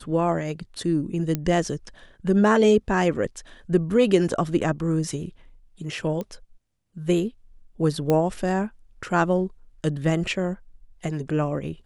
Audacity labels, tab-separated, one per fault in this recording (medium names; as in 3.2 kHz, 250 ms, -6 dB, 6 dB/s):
1.350000	1.350000	pop -12 dBFS
6.210000	6.210000	pop -19 dBFS
8.100000	8.100000	pop -10 dBFS